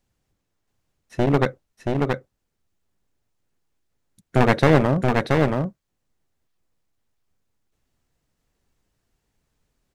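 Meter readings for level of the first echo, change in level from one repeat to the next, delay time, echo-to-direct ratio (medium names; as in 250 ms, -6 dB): -3.5 dB, no regular repeats, 677 ms, -3.5 dB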